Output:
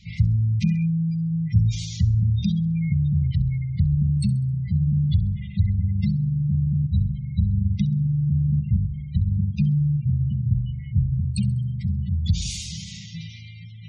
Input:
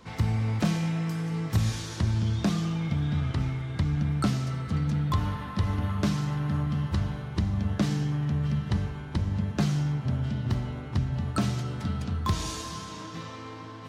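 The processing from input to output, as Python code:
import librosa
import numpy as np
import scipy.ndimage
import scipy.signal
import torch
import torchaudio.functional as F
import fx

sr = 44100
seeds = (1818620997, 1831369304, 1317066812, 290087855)

y = fx.brickwall_bandstop(x, sr, low_hz=210.0, high_hz=1900.0)
y = fx.peak_eq(y, sr, hz=820.0, db=-13.0, octaves=1.2)
y = fx.spec_gate(y, sr, threshold_db=-25, keep='strong')
y = fx.echo_wet_highpass(y, sr, ms=66, feedback_pct=38, hz=5400.0, wet_db=-14.0)
y = y * librosa.db_to_amplitude(7.0)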